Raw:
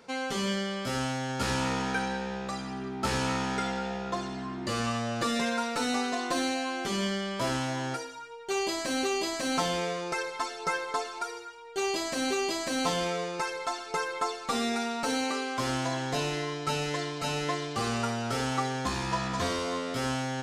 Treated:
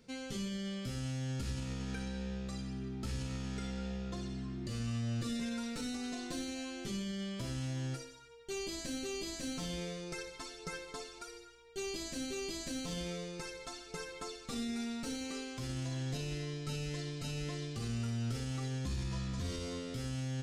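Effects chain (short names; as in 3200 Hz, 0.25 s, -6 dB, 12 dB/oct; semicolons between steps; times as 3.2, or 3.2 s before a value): passive tone stack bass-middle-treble 10-0-1; limiter -44.5 dBFS, peak gain reduction 8.5 dB; flutter echo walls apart 10.2 m, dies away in 0.27 s; gain +14 dB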